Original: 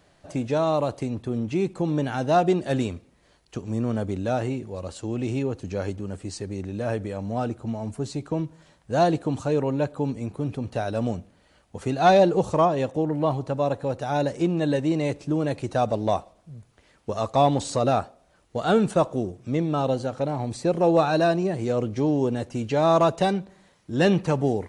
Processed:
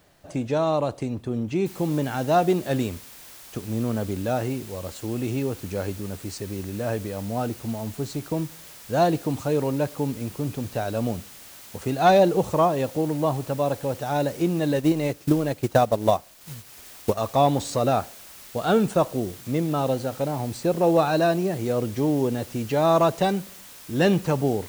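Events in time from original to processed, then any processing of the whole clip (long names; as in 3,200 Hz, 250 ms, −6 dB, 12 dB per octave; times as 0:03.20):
0:01.66: noise floor change −68 dB −45 dB
0:14.76–0:17.18: transient designer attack +8 dB, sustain −7 dB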